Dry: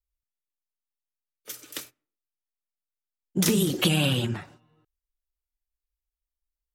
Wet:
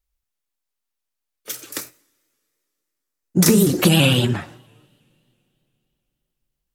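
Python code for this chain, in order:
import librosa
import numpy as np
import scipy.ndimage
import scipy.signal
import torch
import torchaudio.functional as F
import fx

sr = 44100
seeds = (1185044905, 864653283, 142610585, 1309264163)

y = fx.peak_eq(x, sr, hz=3200.0, db=-11.5, octaves=0.5, at=(1.69, 3.92))
y = fx.rev_double_slope(y, sr, seeds[0], early_s=0.68, late_s=3.2, knee_db=-17, drr_db=20.0)
y = fx.vibrato_shape(y, sr, shape='saw_up', rate_hz=3.0, depth_cents=100.0)
y = F.gain(torch.from_numpy(y), 8.5).numpy()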